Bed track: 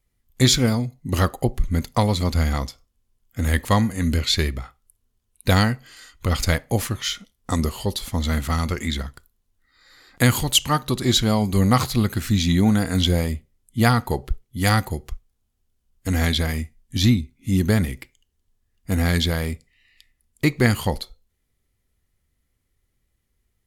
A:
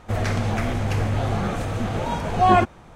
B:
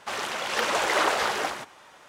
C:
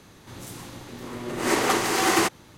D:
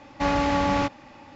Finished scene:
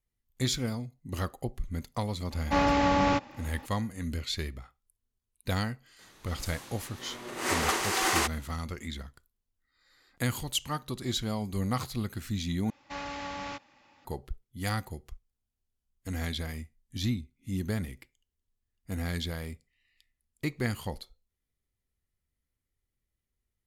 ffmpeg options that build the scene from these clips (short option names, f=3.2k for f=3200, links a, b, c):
-filter_complex "[4:a]asplit=2[a][b];[0:a]volume=-13dB[c];[3:a]lowshelf=f=410:g=-11.5[d];[b]tiltshelf=f=970:g=-5.5[e];[c]asplit=2[f][g];[f]atrim=end=12.704[h];[e]atrim=end=1.35,asetpts=PTS-STARTPTS,volume=-14dB[i];[g]atrim=start=14.046[j];[a]atrim=end=1.35,asetpts=PTS-STARTPTS,volume=-1.5dB,afade=t=in:d=0.004:c=hsin,afade=t=out:st=1.346:d=0.004:c=hsin,adelay=2310[k];[d]atrim=end=2.57,asetpts=PTS-STARTPTS,volume=-3.5dB,afade=t=in:d=0.004:c=hsin,afade=t=out:st=2.566:d=0.004:c=hsin,adelay=5990[l];[h][i]acrossfade=d=0.004:c1=hsin:c2=hsin[m];[m][j]acrossfade=d=0.004:c1=hsin:c2=hsin[n];[n][k][l]amix=inputs=3:normalize=0"